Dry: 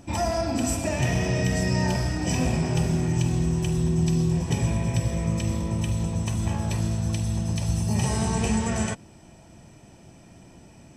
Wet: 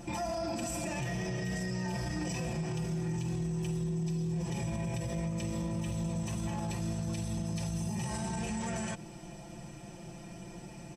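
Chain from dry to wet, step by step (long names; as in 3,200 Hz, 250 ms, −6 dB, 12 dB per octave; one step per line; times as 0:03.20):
comb filter 5.8 ms, depth 92%
downward compressor, threshold −24 dBFS, peak gain reduction 9.5 dB
brickwall limiter −27.5 dBFS, peak gain reduction 11.5 dB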